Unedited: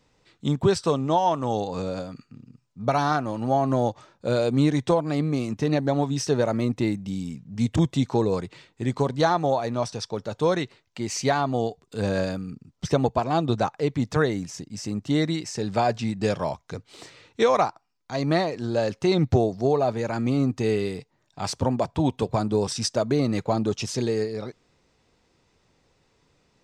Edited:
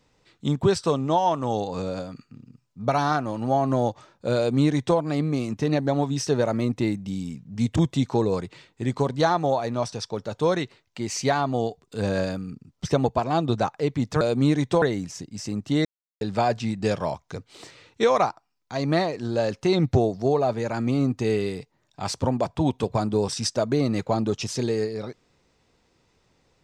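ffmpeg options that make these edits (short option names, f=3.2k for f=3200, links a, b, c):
-filter_complex "[0:a]asplit=5[a][b][c][d][e];[a]atrim=end=14.212[f];[b]atrim=start=4.368:end=4.982[g];[c]atrim=start=14.208:end=15.24,asetpts=PTS-STARTPTS,afade=t=out:st=1.028:d=0.004:c=hsin[h];[d]atrim=start=15.24:end=15.6,asetpts=PTS-STARTPTS,volume=0[i];[e]atrim=start=15.6,asetpts=PTS-STARTPTS,afade=t=in:d=0.004:c=hsin[j];[f][g]acrossfade=d=0.004:c1=hsin:c2=hsin[k];[h][i][j]concat=n=3:v=0:a=1[l];[k][l]acrossfade=d=0.004:c1=hsin:c2=hsin"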